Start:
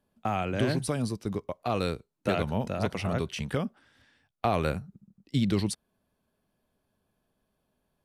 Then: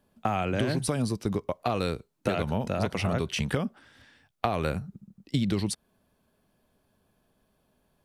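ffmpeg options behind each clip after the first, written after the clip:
-af "acompressor=threshold=-30dB:ratio=5,volume=6.5dB"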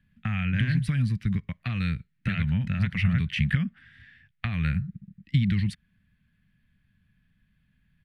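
-af "firequalizer=gain_entry='entry(170,0);entry(360,-28);entry(600,-30);entry(1000,-23);entry(1800,2);entry(2500,-4);entry(5700,-22)':delay=0.05:min_phase=1,volume=7dB"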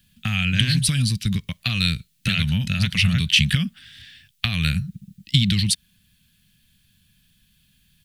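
-af "aexciter=amount=10.8:drive=3.7:freq=2.9k,volume=3.5dB"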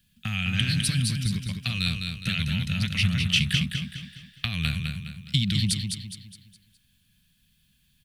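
-af "aecho=1:1:207|414|621|828|1035:0.531|0.212|0.0849|0.034|0.0136,volume=-6dB"

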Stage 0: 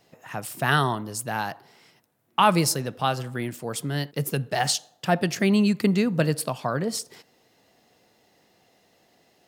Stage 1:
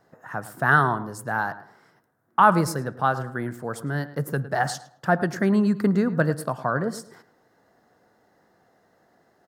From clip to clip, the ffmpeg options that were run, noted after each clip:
-filter_complex "[0:a]highshelf=f=2k:t=q:w=3:g=-8.5,asplit=2[a][b];[b]adelay=108,lowpass=f=2.7k:p=1,volume=-14.5dB,asplit=2[c][d];[d]adelay=108,lowpass=f=2.7k:p=1,volume=0.27,asplit=2[e][f];[f]adelay=108,lowpass=f=2.7k:p=1,volume=0.27[g];[a][c][e][g]amix=inputs=4:normalize=0"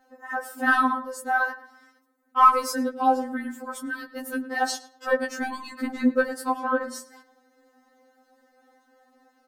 -filter_complex "[0:a]asplit=2[a][b];[b]asoftclip=type=tanh:threshold=-16dB,volume=-11dB[c];[a][c]amix=inputs=2:normalize=0,afftfilt=real='re*3.46*eq(mod(b,12),0)':imag='im*3.46*eq(mod(b,12),0)':win_size=2048:overlap=0.75,volume=1.5dB"

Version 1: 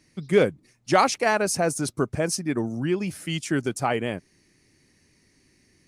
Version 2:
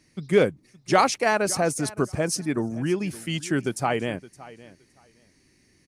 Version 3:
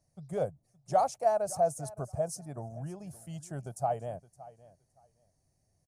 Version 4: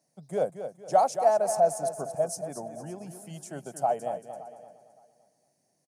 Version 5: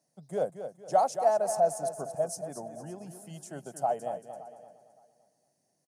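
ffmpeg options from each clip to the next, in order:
-af "aecho=1:1:567|1134:0.112|0.0191"
-af "firequalizer=gain_entry='entry(140,0);entry(210,-12);entry(330,-17);entry(670,8);entry(960,-7);entry(2100,-23);entry(7000,-5);entry(14000,-3)':delay=0.05:min_phase=1,volume=-7dB"
-filter_complex "[0:a]highpass=f=190:w=0.5412,highpass=f=190:w=1.3066,bandreject=f=1.2k:w=12,asplit=2[a][b];[b]aecho=0:1:229|458|687|916:0.335|0.124|0.0459|0.017[c];[a][c]amix=inputs=2:normalize=0,volume=4.5dB"
-af "bandreject=f=2.3k:w=13,volume=-2.5dB"

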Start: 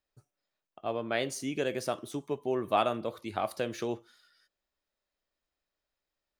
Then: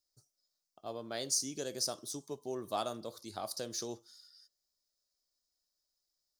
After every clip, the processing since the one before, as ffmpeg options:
-af "highshelf=f=3.6k:t=q:w=3:g=12.5,volume=-8.5dB"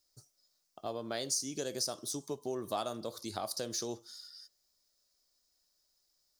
-af "acompressor=threshold=-47dB:ratio=2,volume=8.5dB"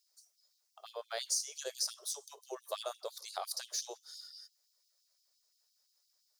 -af "afftfilt=real='re*gte(b*sr/1024,350*pow(2800/350,0.5+0.5*sin(2*PI*5.8*pts/sr)))':imag='im*gte(b*sr/1024,350*pow(2800/350,0.5+0.5*sin(2*PI*5.8*pts/sr)))':win_size=1024:overlap=0.75"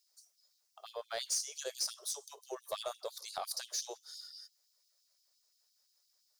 -af "asoftclip=type=tanh:threshold=-26.5dB,volume=1dB"

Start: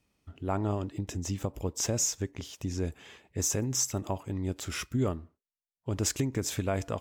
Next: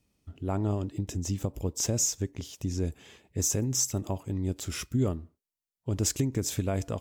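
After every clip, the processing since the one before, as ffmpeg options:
-af "equalizer=f=1.4k:w=0.44:g=-7.5,volume=3dB"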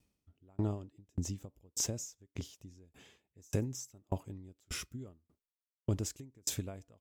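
-af "aeval=exprs='val(0)*pow(10,-38*if(lt(mod(1.7*n/s,1),2*abs(1.7)/1000),1-mod(1.7*n/s,1)/(2*abs(1.7)/1000),(mod(1.7*n/s,1)-2*abs(1.7)/1000)/(1-2*abs(1.7)/1000))/20)':c=same"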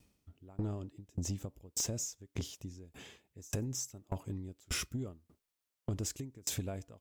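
-af "acompressor=threshold=-37dB:ratio=5,asoftclip=type=tanh:threshold=-34.5dB,volume=7.5dB"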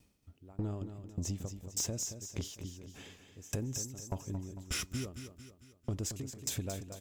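-af "aecho=1:1:225|450|675|900|1125:0.335|0.157|0.074|0.0348|0.0163"

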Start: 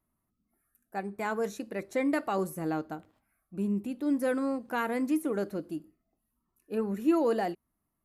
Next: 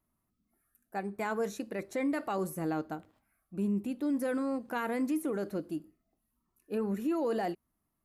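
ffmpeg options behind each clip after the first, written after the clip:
-af "alimiter=level_in=0.5dB:limit=-24dB:level=0:latency=1:release=28,volume=-0.5dB"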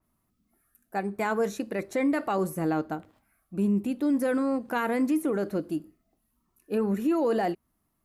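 -af "adynamicequalizer=threshold=0.00282:dfrequency=3300:dqfactor=0.7:tfrequency=3300:tqfactor=0.7:attack=5:release=100:ratio=0.375:range=2:mode=cutabove:tftype=highshelf,volume=6dB"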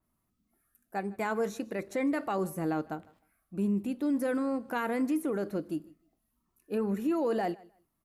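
-af "aecho=1:1:154|308:0.0708|0.0135,volume=-4dB"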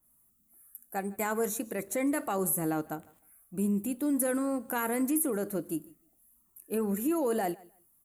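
-af "aexciter=amount=7.5:drive=4.8:freq=7k"

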